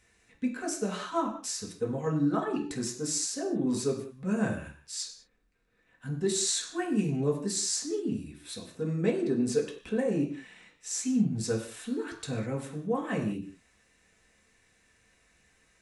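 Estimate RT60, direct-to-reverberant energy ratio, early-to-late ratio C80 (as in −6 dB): non-exponential decay, −2.5 dB, 11.5 dB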